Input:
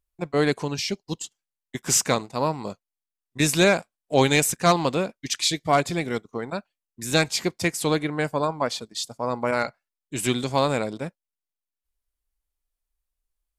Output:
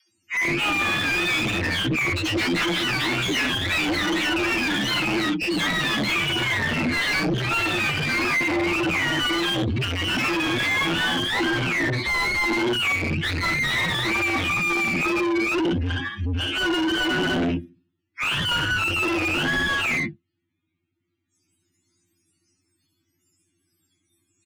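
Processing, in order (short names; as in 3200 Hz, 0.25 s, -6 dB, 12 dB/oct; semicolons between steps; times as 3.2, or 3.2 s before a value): spectrum mirrored in octaves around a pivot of 600 Hz; doubler 35 ms -6.5 dB; echoes that change speed 0.197 s, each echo +6 st, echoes 3; EQ curve 240 Hz 0 dB, 340 Hz +10 dB, 490 Hz -22 dB, 740 Hz -15 dB, 2300 Hz +1 dB; time stretch by phase-locked vocoder 1.8×; LPF 11000 Hz; dispersion lows, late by 0.119 s, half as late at 350 Hz; compressor 6:1, threshold -22 dBFS, peak gain reduction 12 dB; soft clip -30 dBFS, distortion -8 dB; bell 3000 Hz +11.5 dB 2.6 oct; overdrive pedal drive 31 dB, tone 1600 Hz, clips at -17 dBFS; gain +4 dB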